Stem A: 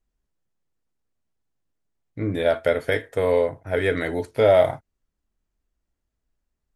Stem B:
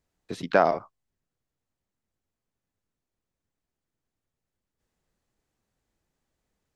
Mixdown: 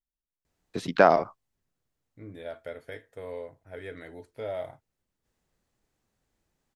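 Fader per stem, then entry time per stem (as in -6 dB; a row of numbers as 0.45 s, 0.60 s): -18.5 dB, +2.0 dB; 0.00 s, 0.45 s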